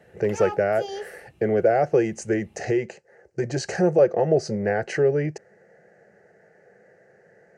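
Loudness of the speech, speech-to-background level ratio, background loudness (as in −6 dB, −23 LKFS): −23.0 LKFS, 13.5 dB, −36.5 LKFS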